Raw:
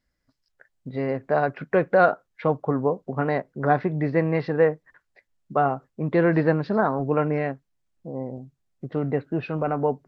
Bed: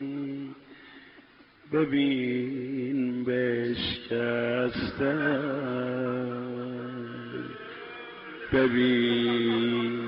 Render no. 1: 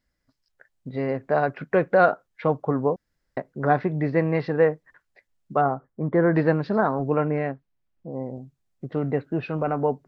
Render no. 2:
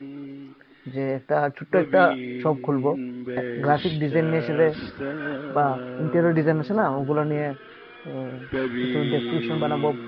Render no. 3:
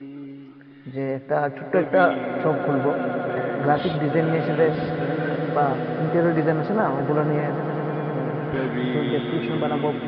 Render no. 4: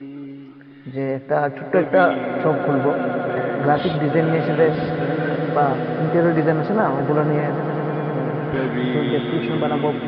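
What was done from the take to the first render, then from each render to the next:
0:02.96–0:03.37: fill with room tone; 0:05.61–0:06.36: Savitzky-Golay smoothing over 41 samples; 0:07.17–0:08.12: high-frequency loss of the air 180 metres
mix in bed −3.5 dB
high-frequency loss of the air 110 metres; echo that builds up and dies away 100 ms, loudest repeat 8, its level −15.5 dB
level +3 dB; brickwall limiter −3 dBFS, peak gain reduction 1.5 dB

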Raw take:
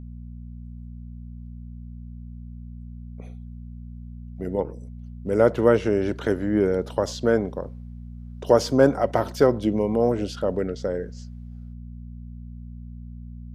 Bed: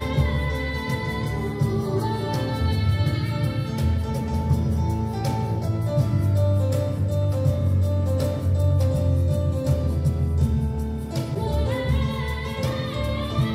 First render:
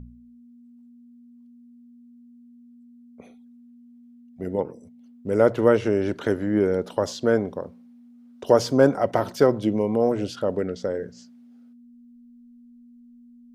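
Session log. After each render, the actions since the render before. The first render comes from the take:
hum removal 60 Hz, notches 3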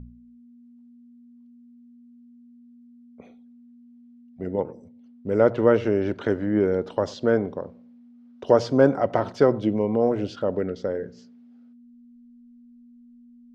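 high-frequency loss of the air 130 metres
feedback echo with a low-pass in the loop 94 ms, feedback 35%, low-pass 1,000 Hz, level −21.5 dB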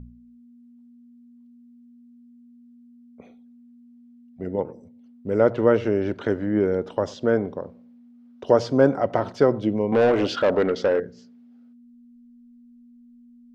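0:06.75–0:07.42: parametric band 4,300 Hz −7 dB 0.21 octaves
0:09.92–0:11.00: mid-hump overdrive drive 21 dB, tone 3,700 Hz, clips at −10 dBFS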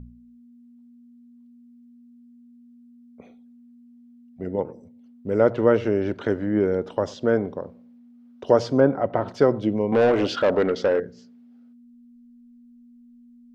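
0:08.80–0:09.28: high-frequency loss of the air 290 metres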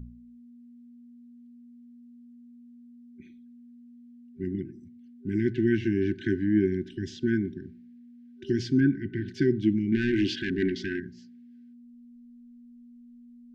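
brick-wall band-stop 390–1,500 Hz
high-shelf EQ 5,800 Hz −7.5 dB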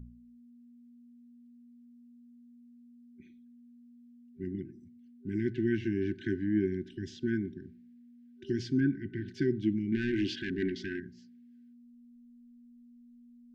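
level −5.5 dB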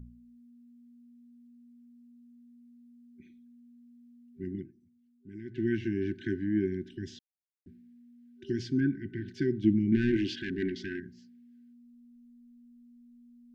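0:04.59–0:05.62: duck −11.5 dB, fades 0.13 s
0:07.19–0:07.66: silence
0:09.64–0:10.17: low-shelf EQ 430 Hz +7 dB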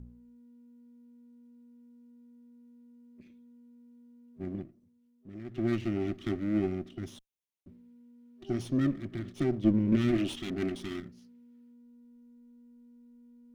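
lower of the sound and its delayed copy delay 0.32 ms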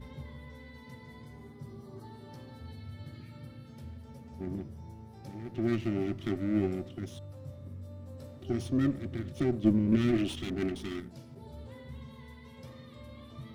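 mix in bed −23.5 dB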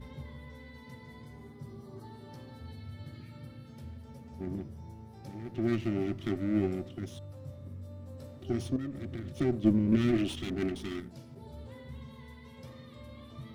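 0:08.76–0:09.38: downward compressor 10 to 1, threshold −33 dBFS

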